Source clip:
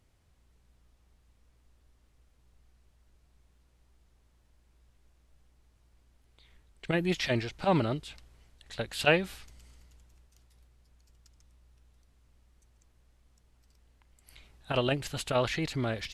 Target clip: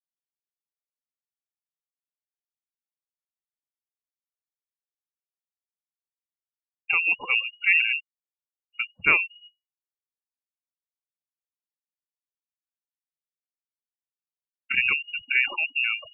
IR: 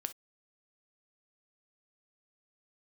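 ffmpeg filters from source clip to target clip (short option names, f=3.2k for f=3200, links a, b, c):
-af "afftfilt=real='re*gte(hypot(re,im),0.0447)':imag='im*gte(hypot(re,im),0.0447)':win_size=1024:overlap=0.75,highshelf=f=2.3k:g=-11.5,lowpass=f=2.5k:t=q:w=0.5098,lowpass=f=2.5k:t=q:w=0.6013,lowpass=f=2.5k:t=q:w=0.9,lowpass=f=2.5k:t=q:w=2.563,afreqshift=-2900,volume=6dB"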